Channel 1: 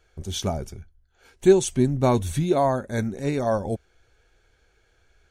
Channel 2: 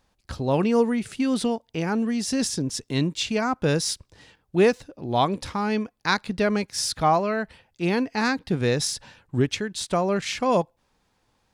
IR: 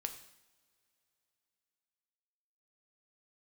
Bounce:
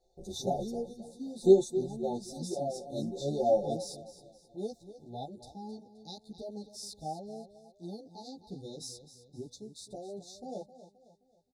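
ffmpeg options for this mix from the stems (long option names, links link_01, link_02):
-filter_complex "[0:a]bass=frequency=250:gain=-12,treble=frequency=4000:gain=-13,aecho=1:1:5.6:0.83,volume=8.5dB,afade=type=out:start_time=1.34:duration=0.52:silence=0.281838,afade=type=in:start_time=2.77:duration=0.33:silence=0.354813,asplit=2[link_01][link_02];[link_02]volume=-15.5dB[link_03];[1:a]volume=-16dB,asplit=2[link_04][link_05];[link_05]volume=-13.5dB[link_06];[link_03][link_06]amix=inputs=2:normalize=0,aecho=0:1:262|524|786|1048|1310|1572:1|0.4|0.16|0.064|0.0256|0.0102[link_07];[link_01][link_04][link_07]amix=inputs=3:normalize=0,afftfilt=real='re*(1-between(b*sr/4096,870,3500))':imag='im*(1-between(b*sr/4096,870,3500))':win_size=4096:overlap=0.75,highshelf=frequency=3700:gain=2.5,asplit=2[link_08][link_09];[link_09]adelay=11.9,afreqshift=3[link_10];[link_08][link_10]amix=inputs=2:normalize=1"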